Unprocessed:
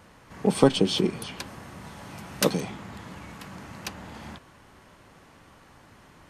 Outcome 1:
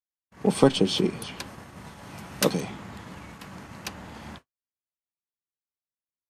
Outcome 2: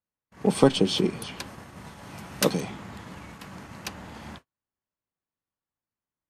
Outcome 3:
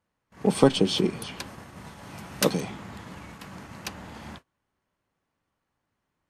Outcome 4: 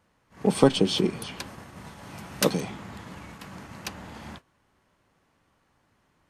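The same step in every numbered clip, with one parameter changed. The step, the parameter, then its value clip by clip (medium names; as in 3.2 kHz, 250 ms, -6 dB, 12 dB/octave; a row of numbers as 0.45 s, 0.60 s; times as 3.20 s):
gate, range: -58 dB, -43 dB, -27 dB, -15 dB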